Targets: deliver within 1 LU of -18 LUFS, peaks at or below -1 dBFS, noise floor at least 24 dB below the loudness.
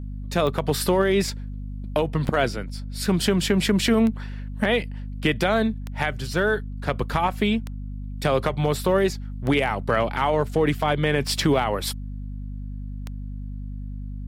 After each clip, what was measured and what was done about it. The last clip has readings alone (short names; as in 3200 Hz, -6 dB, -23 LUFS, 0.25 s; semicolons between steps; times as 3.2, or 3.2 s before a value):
clicks 8; hum 50 Hz; harmonics up to 250 Hz; hum level -30 dBFS; loudness -23.5 LUFS; peak -9.5 dBFS; loudness target -18.0 LUFS
-> de-click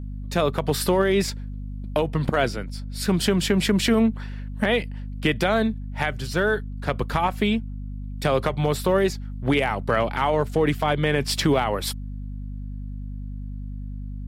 clicks 0; hum 50 Hz; harmonics up to 250 Hz; hum level -30 dBFS
-> de-hum 50 Hz, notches 5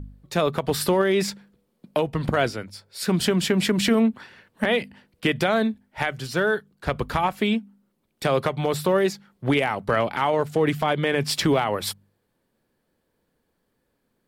hum none; loudness -24.0 LUFS; peak -10.5 dBFS; loudness target -18.0 LUFS
-> gain +6 dB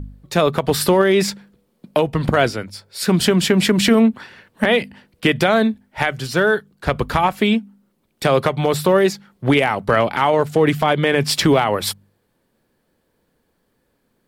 loudness -18.0 LUFS; peak -4.5 dBFS; noise floor -67 dBFS